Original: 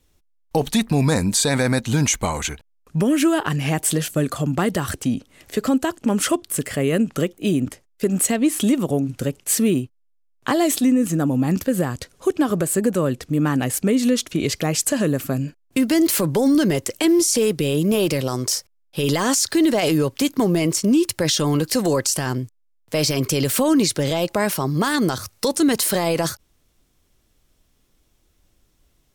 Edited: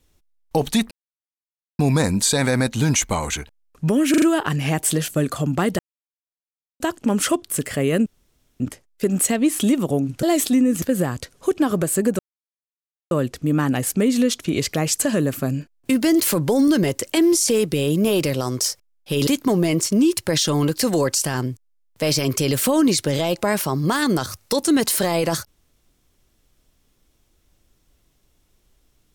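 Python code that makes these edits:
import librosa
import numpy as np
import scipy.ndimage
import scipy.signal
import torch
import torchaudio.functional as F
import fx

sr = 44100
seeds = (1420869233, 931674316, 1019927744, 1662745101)

y = fx.edit(x, sr, fx.insert_silence(at_s=0.91, length_s=0.88),
    fx.stutter(start_s=3.22, slice_s=0.04, count=4),
    fx.silence(start_s=4.79, length_s=1.01),
    fx.room_tone_fill(start_s=7.06, length_s=0.54),
    fx.cut(start_s=9.23, length_s=1.31),
    fx.cut(start_s=11.13, length_s=0.48),
    fx.insert_silence(at_s=12.98, length_s=0.92),
    fx.cut(start_s=19.14, length_s=1.05), tone=tone)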